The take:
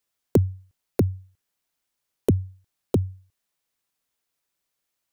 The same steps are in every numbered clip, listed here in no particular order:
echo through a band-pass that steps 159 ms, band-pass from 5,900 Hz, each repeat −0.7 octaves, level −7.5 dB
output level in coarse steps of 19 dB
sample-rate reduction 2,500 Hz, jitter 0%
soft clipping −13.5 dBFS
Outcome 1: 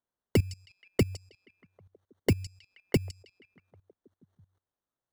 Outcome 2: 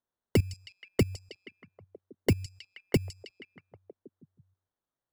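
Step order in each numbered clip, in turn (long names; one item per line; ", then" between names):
sample-rate reduction, then echo through a band-pass that steps, then output level in coarse steps, then soft clipping
sample-rate reduction, then output level in coarse steps, then echo through a band-pass that steps, then soft clipping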